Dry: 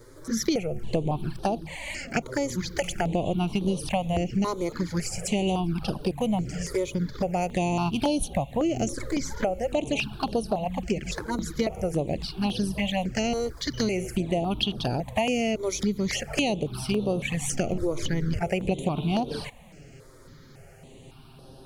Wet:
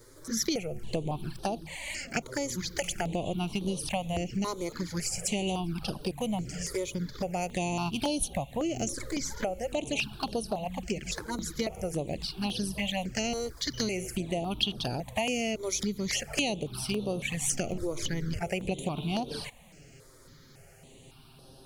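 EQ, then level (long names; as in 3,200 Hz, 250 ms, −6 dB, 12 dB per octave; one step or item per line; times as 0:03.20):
high-shelf EQ 2,700 Hz +8.5 dB
−6.0 dB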